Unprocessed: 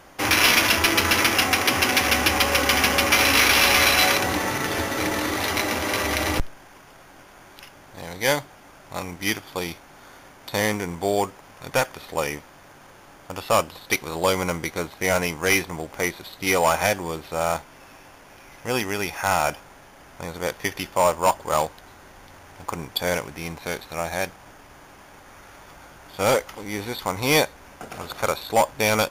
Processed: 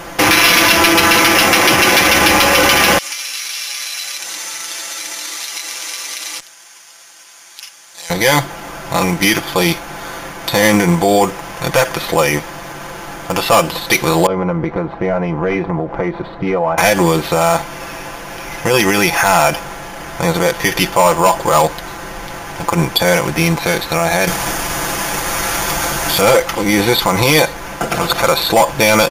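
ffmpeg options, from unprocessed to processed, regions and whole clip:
ffmpeg -i in.wav -filter_complex "[0:a]asettb=1/sr,asplit=3[link_01][link_02][link_03];[link_01]atrim=end=2.984[link_04];[link_02]atrim=start=2.98:end=8.1,asetpts=PTS-STARTPTS,afade=type=in:duration=0.004:curve=qsin,afade=type=out:start_time=5.116:duration=0.004:curve=qsin,bandpass=frequency=7100:width_type=q:width=1.2,acompressor=threshold=-39dB:ratio=8:attack=3.2:release=140:knee=1:detection=peak[link_05];[link_03]atrim=start=8.096[link_06];[link_04][link_05]acrossfade=duration=0.004:curve1=hsin:curve2=qsin[link_07];[link_07][link_06]acrossfade=duration=0.004:curve1=qsin:curve2=hsin,asettb=1/sr,asplit=3[link_08][link_09][link_10];[link_08]atrim=end=14.264[link_11];[link_09]atrim=start=14.26:end=16.78,asetpts=PTS-STARTPTS,afade=type=in:duration=0.004:curve=qsin,afade=type=out:start_time=2.516:duration=0.004:curve=qsin,lowpass=1100,acompressor=threshold=-34dB:ratio=4:attack=3.2:release=140:knee=1:detection=peak[link_12];[link_10]atrim=start=16.776[link_13];[link_11][link_12]acrossfade=duration=0.004:curve1=hsin:curve2=qsin[link_14];[link_14][link_13]acrossfade=duration=0.004:curve1=qsin:curve2=hsin,asettb=1/sr,asplit=3[link_15][link_16][link_17];[link_15]atrim=end=24.274[link_18];[link_16]atrim=start=24.27:end=26.21,asetpts=PTS-STARTPTS,afade=type=in:duration=0.004:curve=qsin,afade=type=out:start_time=1.936:duration=0.004:curve=qsin,equalizer=frequency=12000:width_type=o:width=2.3:gain=10,acontrast=69[link_19];[link_17]atrim=start=26.206[link_20];[link_18][link_19]acrossfade=duration=0.004:curve1=hsin:curve2=qsin[link_21];[link_21][link_20]acrossfade=duration=0.004:curve1=qsin:curve2=hsin,aecho=1:1:5.9:0.65,alimiter=level_in=18.5dB:limit=-1dB:release=50:level=0:latency=1,volume=-1dB" out.wav

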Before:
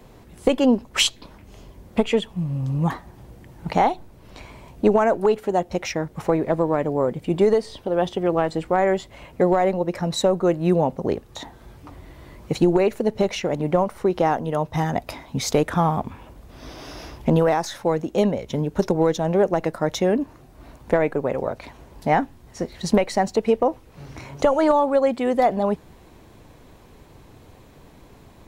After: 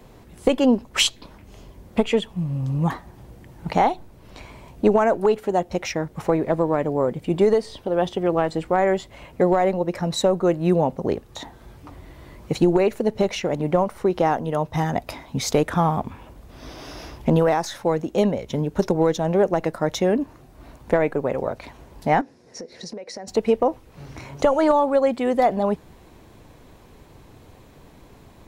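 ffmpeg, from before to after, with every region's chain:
ffmpeg -i in.wav -filter_complex "[0:a]asettb=1/sr,asplit=3[link_01][link_02][link_03];[link_01]atrim=end=22.214[link_04];[link_02]atrim=start=22.21:end=23.28,asetpts=PTS-STARTPTS,afade=type=in:duration=0.004:curve=qsin,afade=type=out:start_time=1.066:duration=0.004:curve=qsin,highpass=200,equalizer=frequency=480:width_type=q:width=4:gain=9,equalizer=frequency=840:width_type=q:width=4:gain=-4,equalizer=frequency=1200:width_type=q:width=4:gain=-7,equalizer=frequency=3100:width_type=q:width=4:gain=-9,equalizer=frequency=5300:width_type=q:width=4:gain=8,equalizer=frequency=8000:width_type=q:width=4:gain=-6,lowpass=frequency=9400:width=0.5412,lowpass=frequency=9400:width=1.3066,acompressor=threshold=-32dB:ratio=8:attack=3.2:release=140:knee=1:detection=peak[link_05];[link_03]atrim=start=23.276[link_06];[link_04][link_05]acrossfade=duration=0.004:curve1=hsin:curve2=qsin[link_07];[link_07][link_06]acrossfade=duration=0.004:curve1=qsin:curve2=hsin" out.wav

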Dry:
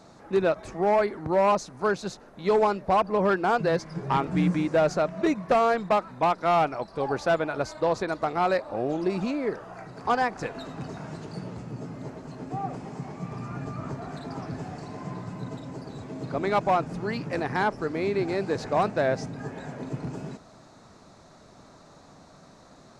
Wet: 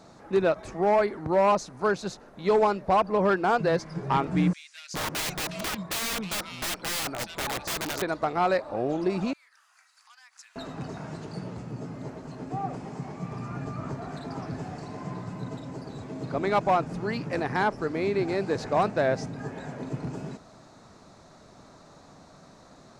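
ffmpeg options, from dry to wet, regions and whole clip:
ffmpeg -i in.wav -filter_complex "[0:a]asettb=1/sr,asplit=3[link_01][link_02][link_03];[link_01]atrim=end=4.534[link_04];[link_02]atrim=start=4.53:end=8.02,asetpts=PTS-STARTPTS,afade=type=in:duration=0.004:curve=qsin,afade=type=out:start_time=3.486:duration=0.004:curve=qsin,acrossover=split=2500[link_05][link_06];[link_05]adelay=410[link_07];[link_07][link_06]amix=inputs=2:normalize=0,atrim=end_sample=153909,aeval=exprs='(mod(18.8*val(0)+1,2)-1)/18.8':channel_layout=same[link_08];[link_03]atrim=start=8.016[link_09];[link_04][link_08]acrossfade=duration=0.004:curve1=hsin:curve2=qsin[link_10];[link_10][link_09]acrossfade=duration=0.004:curve1=qsin:curve2=hsin,asettb=1/sr,asplit=3[link_11][link_12][link_13];[link_11]atrim=end=9.334[link_14];[link_12]atrim=start=9.33:end=10.56,asetpts=PTS-STARTPTS,afade=type=in:duration=0.004:curve=qsin,afade=type=out:start_time=1.226:duration=0.004:curve=qsin,acompressor=threshold=-32dB:ratio=6:attack=3.2:release=140:knee=1:detection=peak,highpass=frequency=1100:width=0.5412,highpass=frequency=1100:width=1.3066,aderivative[link_15];[link_13]atrim=start=10.556[link_16];[link_14][link_15]acrossfade=duration=0.004:curve1=hsin:curve2=qsin[link_17];[link_17][link_16]acrossfade=duration=0.004:curve1=qsin:curve2=hsin" out.wav

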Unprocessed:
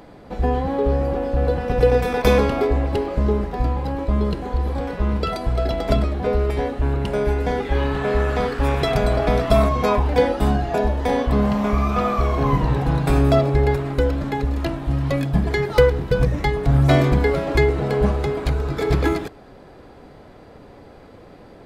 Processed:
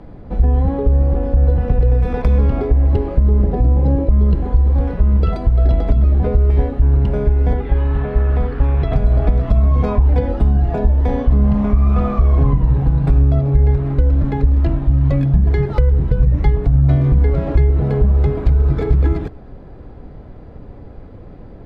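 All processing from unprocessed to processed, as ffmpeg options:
ffmpeg -i in.wav -filter_complex "[0:a]asettb=1/sr,asplit=3[link_01][link_02][link_03];[link_01]atrim=end=3.434[link_04];[link_02]atrim=start=3.43:end=4.09,asetpts=PTS-STARTPTS,afade=type=in:duration=0.004:curve=qsin,afade=type=out:start_time=0.656:duration=0.004:curve=qsin,highpass=frequency=120:poles=1,lowshelf=frequency=760:width_type=q:width=1.5:gain=6[link_05];[link_03]atrim=start=4.086[link_06];[link_04][link_05]acrossfade=duration=0.004:curve1=hsin:curve2=qsin[link_07];[link_07][link_06]acrossfade=duration=0.004:curve1=qsin:curve2=hsin,asettb=1/sr,asplit=3[link_08][link_09][link_10];[link_08]atrim=end=7.534[link_11];[link_09]atrim=start=7.53:end=8.92,asetpts=PTS-STARTPTS,afade=type=in:duration=0.004:curve=qsin,afade=type=out:start_time=1.386:duration=0.004:curve=qsin,lowpass=4000,acrossover=split=82|550[link_12][link_13][link_14];[link_12]acompressor=threshold=-28dB:ratio=4[link_15];[link_13]acompressor=threshold=-29dB:ratio=4[link_16];[link_14]acompressor=threshold=-29dB:ratio=4[link_17];[link_15][link_16][link_17]amix=inputs=3:normalize=0[link_18];[link_10]atrim=start=8.916[link_19];[link_11][link_18]acrossfade=duration=0.004:curve1=hsin:curve2=qsin[link_20];[link_20][link_19]acrossfade=duration=0.004:curve1=qsin:curve2=hsin,aemphasis=mode=reproduction:type=riaa,acrossover=split=170[link_21][link_22];[link_22]acompressor=threshold=-16dB:ratio=6[link_23];[link_21][link_23]amix=inputs=2:normalize=0,alimiter=limit=-3dB:level=0:latency=1:release=293,volume=-1.5dB" out.wav

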